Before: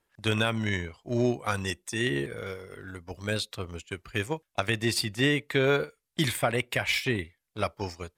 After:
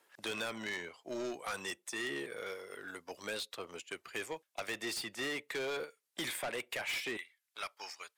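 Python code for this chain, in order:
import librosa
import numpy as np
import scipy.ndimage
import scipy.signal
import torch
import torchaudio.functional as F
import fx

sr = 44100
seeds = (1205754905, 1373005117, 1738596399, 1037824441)

y = fx.highpass(x, sr, hz=fx.steps((0.0, 390.0), (7.17, 1300.0)), slope=12)
y = 10.0 ** (-29.0 / 20.0) * np.tanh(y / 10.0 ** (-29.0 / 20.0))
y = fx.band_squash(y, sr, depth_pct=40)
y = F.gain(torch.from_numpy(y), -4.0).numpy()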